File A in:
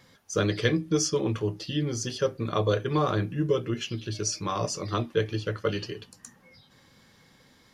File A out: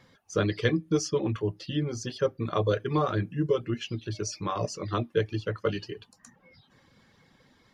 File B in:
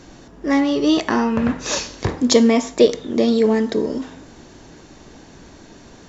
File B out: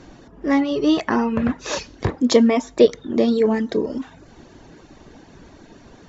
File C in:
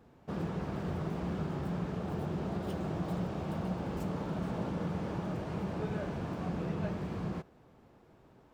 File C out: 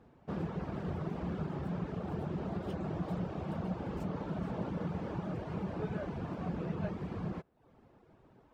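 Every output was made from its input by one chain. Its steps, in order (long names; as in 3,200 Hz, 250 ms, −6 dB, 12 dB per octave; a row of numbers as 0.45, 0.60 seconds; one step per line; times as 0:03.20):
low-pass filter 3,200 Hz 6 dB per octave
reverb reduction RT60 0.6 s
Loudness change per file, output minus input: −1.0, −1.5, −2.0 LU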